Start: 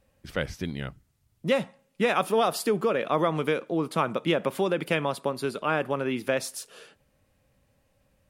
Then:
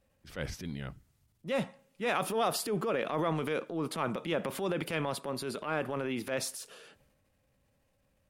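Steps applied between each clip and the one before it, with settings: transient shaper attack -8 dB, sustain +6 dB; gain -5.5 dB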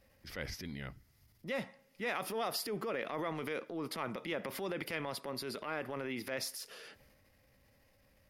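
thirty-one-band EQ 160 Hz -5 dB, 2000 Hz +8 dB, 5000 Hz +8 dB, 8000 Hz -6 dB, 12500 Hz +7 dB; compressor 1.5:1, threshold -59 dBFS, peak gain reduction 12.5 dB; gain +4.5 dB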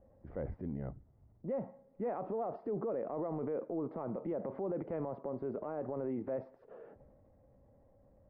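ladder low-pass 920 Hz, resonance 25%; limiter -39.5 dBFS, peak gain reduction 6.5 dB; gain +10 dB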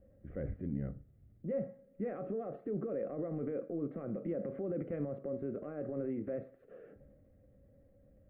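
fixed phaser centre 2200 Hz, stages 4; on a send at -10 dB: reverb RT60 0.35 s, pre-delay 3 ms; on the sum: gain +2 dB

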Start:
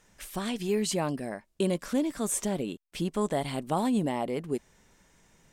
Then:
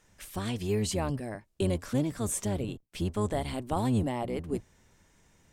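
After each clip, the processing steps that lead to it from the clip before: octaver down 1 oct, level 0 dB; gain -2.5 dB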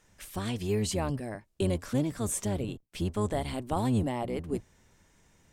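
nothing audible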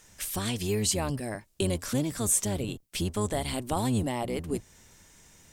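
high shelf 3300 Hz +10.5 dB; in parallel at +2 dB: compressor, threshold -35 dBFS, peak gain reduction 14.5 dB; on the sum: gain -3 dB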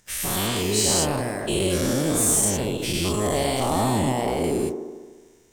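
spectral dilation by 0.24 s; sample leveller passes 2; band-limited delay 74 ms, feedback 69%, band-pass 530 Hz, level -5 dB; gain -7.5 dB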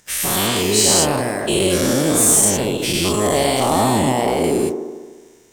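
low shelf 100 Hz -10.5 dB; gain +7 dB

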